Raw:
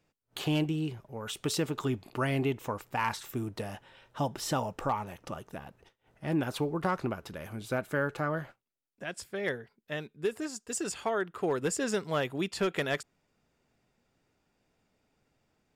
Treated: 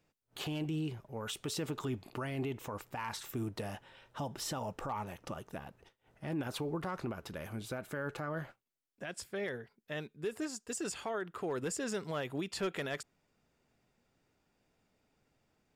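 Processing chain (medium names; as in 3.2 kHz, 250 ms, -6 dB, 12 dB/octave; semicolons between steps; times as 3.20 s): peak limiter -27.5 dBFS, peak gain reduction 9 dB; trim -1.5 dB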